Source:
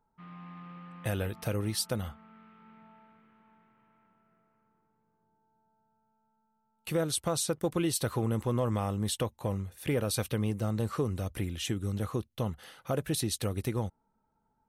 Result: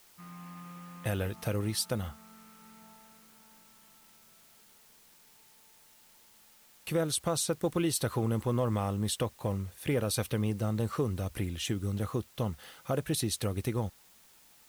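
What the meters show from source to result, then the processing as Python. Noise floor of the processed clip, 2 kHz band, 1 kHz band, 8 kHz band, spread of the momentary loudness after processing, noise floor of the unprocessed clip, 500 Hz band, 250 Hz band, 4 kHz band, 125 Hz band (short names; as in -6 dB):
-60 dBFS, 0.0 dB, 0.0 dB, 0.0 dB, 14 LU, -76 dBFS, 0.0 dB, 0.0 dB, 0.0 dB, 0.0 dB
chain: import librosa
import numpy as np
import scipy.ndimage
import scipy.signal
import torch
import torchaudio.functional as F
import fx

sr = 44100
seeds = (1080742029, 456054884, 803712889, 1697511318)

y = fx.quant_dither(x, sr, seeds[0], bits=10, dither='triangular')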